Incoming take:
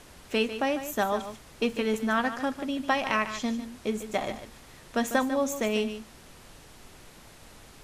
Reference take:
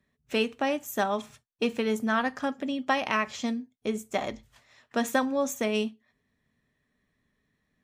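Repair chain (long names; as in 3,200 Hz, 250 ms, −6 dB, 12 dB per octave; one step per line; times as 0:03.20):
noise reduction from a noise print 25 dB
echo removal 148 ms −11 dB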